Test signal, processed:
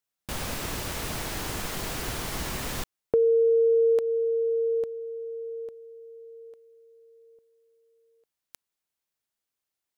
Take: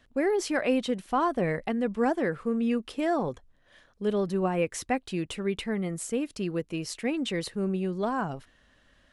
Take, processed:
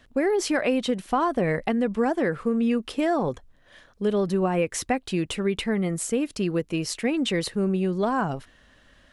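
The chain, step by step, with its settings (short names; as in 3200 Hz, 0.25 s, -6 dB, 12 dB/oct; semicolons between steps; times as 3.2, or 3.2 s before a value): compressor, threshold -25 dBFS; gain +6 dB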